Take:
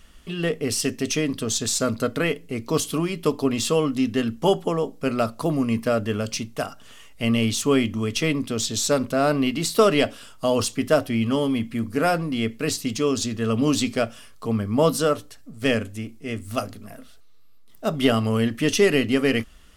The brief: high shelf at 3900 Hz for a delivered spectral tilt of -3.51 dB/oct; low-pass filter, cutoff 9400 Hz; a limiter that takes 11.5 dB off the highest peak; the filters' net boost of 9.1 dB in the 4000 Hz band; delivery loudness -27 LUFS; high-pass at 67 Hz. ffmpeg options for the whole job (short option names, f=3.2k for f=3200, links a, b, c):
-af "highpass=67,lowpass=9.4k,highshelf=f=3.9k:g=7.5,equalizer=f=4k:t=o:g=7.5,volume=-2dB,alimiter=limit=-15.5dB:level=0:latency=1"